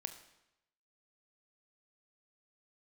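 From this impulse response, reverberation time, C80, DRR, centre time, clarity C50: 0.90 s, 13.0 dB, 8.0 dB, 12 ms, 10.5 dB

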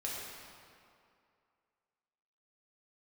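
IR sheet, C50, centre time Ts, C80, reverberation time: -1.5 dB, 0.13 s, 0.0 dB, 2.4 s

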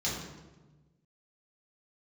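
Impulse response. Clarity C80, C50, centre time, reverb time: 4.5 dB, 1.5 dB, 62 ms, 1.2 s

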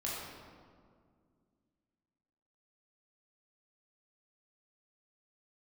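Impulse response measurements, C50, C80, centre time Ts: -1.5 dB, 0.5 dB, 0.109 s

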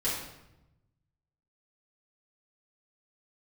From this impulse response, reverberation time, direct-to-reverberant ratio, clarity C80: 0.90 s, -9.0 dB, 5.0 dB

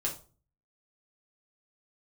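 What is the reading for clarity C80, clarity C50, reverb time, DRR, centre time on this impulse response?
16.5 dB, 10.0 dB, 0.40 s, -3.0 dB, 18 ms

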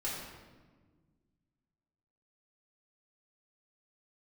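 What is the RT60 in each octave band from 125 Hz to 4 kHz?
2.4, 2.3, 1.6, 1.3, 1.1, 0.90 s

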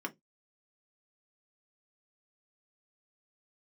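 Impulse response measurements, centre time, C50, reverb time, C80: 5 ms, 24.0 dB, not exponential, 35.5 dB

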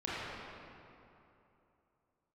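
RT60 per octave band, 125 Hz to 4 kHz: 3.1, 3.0, 3.0, 2.9, 2.3, 1.7 s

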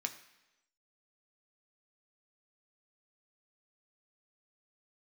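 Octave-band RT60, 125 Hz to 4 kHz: 0.85, 0.95, 1.0, 0.95, 1.0, 1.0 s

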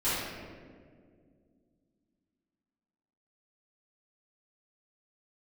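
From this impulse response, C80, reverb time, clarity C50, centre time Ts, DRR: 0.0 dB, 2.0 s, -3.0 dB, 0.117 s, -15.5 dB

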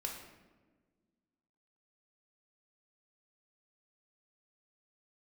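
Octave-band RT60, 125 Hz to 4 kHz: 1.9, 2.2, 1.7, 1.2, 1.0, 0.75 s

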